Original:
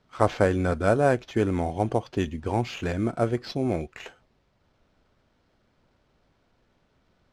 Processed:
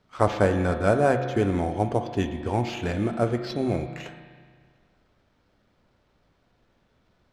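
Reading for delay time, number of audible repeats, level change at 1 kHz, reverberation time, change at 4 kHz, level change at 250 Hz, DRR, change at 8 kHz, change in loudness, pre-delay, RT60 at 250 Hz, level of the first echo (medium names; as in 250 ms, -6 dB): no echo, no echo, +1.0 dB, 1.8 s, +0.5 dB, +1.0 dB, 6.5 dB, 0.0 dB, +0.5 dB, 6 ms, 1.8 s, no echo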